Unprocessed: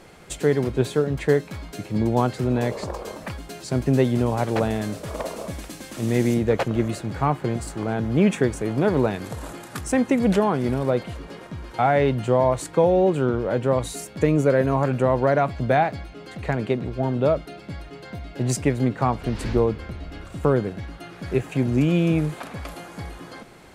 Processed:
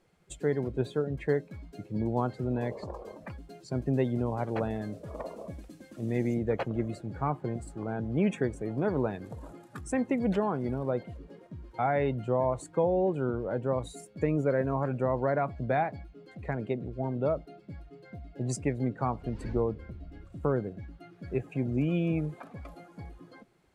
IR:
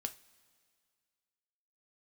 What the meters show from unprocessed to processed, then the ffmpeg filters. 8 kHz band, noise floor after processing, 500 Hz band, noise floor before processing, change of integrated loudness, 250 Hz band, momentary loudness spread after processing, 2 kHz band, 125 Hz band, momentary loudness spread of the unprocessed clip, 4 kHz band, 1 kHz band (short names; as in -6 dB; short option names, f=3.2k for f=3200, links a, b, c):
-12.5 dB, -56 dBFS, -8.5 dB, -43 dBFS, -8.5 dB, -8.5 dB, 18 LU, -10.0 dB, -8.5 dB, 17 LU, under -10 dB, -8.5 dB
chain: -af "afftdn=nr=14:nf=-34,volume=-8.5dB"